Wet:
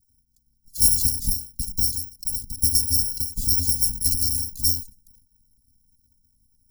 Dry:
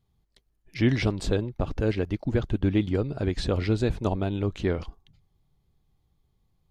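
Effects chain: bit-reversed sample order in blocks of 256 samples; elliptic band-stop 250–5000 Hz, stop band 60 dB; endings held to a fixed fall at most 140 dB/s; trim +5.5 dB

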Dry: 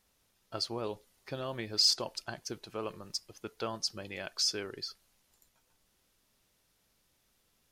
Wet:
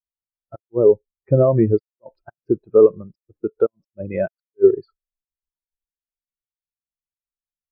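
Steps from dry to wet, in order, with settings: 4.14–4.76 s: harmonic-percussive split harmonic +4 dB; inverted gate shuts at -23 dBFS, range -36 dB; distance through air 500 m; loudness maximiser +29.5 dB; spectral contrast expander 2.5:1; trim -1 dB

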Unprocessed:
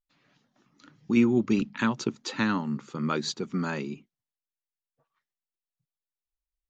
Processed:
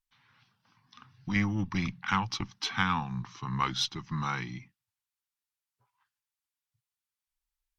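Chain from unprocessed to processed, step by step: single-diode clipper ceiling -18 dBFS; FFT filter 140 Hz 0 dB, 230 Hz -9 dB, 730 Hz -15 dB, 1 kHz +1 dB; tape speed -14%; trim +2 dB

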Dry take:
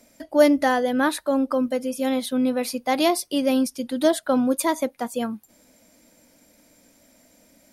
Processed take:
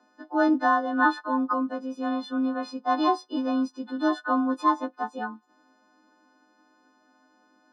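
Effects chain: partials quantised in pitch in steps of 3 st; cabinet simulation 210–3300 Hz, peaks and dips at 290 Hz +4 dB, 420 Hz -4 dB, 660 Hz +9 dB, 1 kHz +8 dB, 1.6 kHz +10 dB, 3.1 kHz -7 dB; static phaser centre 590 Hz, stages 6; trim -3 dB

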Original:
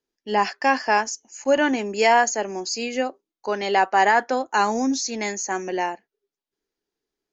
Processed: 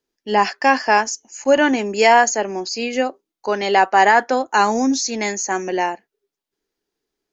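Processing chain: 2.38–2.93 s: low-pass 5.1 kHz 12 dB/octave; trim +4.5 dB

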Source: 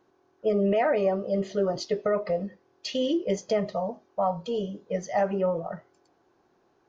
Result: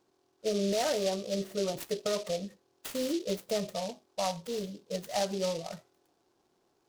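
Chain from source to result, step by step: delay time shaken by noise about 4.2 kHz, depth 0.087 ms; trim -6 dB

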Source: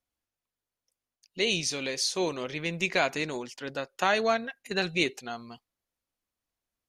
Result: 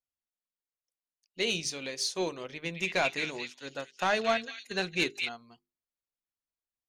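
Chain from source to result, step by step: 2.52–5.29 s: repeats whose band climbs or falls 222 ms, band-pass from 2.8 kHz, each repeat 0.7 oct, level -1 dB; saturation -16 dBFS, distortion -18 dB; hum notches 50/100/150/200/250/300/350/400/450 Hz; upward expansion 1.5:1, over -49 dBFS

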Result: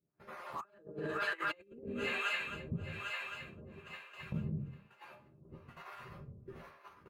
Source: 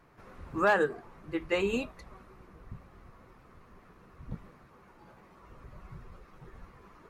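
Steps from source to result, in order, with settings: random holes in the spectrogram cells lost 23%; high-pass 85 Hz 12 dB/octave; peaking EQ 7.4 kHz -7 dB 0.6 oct; doubling 13 ms -4.5 dB; feedback echo behind a high-pass 266 ms, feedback 82%, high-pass 1.7 kHz, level -7 dB; gate -52 dBFS, range -28 dB; peaking EQ 120 Hz +9 dB 0.2 oct; feedback comb 200 Hz, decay 0.21 s, harmonics all, mix 70%; simulated room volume 500 m³, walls mixed, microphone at 0.9 m; compressor with a negative ratio -44 dBFS, ratio -0.5; harmonic tremolo 1.1 Hz, depth 100%, crossover 520 Hz; trim +8.5 dB

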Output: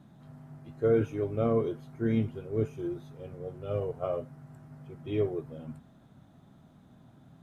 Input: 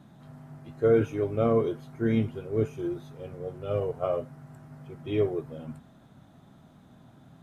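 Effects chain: bass shelf 410 Hz +3.5 dB; trim -5 dB

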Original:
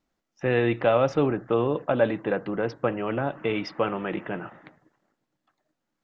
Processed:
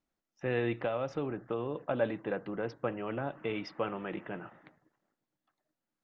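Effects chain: 0.85–1.83 s: compression 2.5:1, threshold -23 dBFS, peak gain reduction 5.5 dB; trim -8.5 dB

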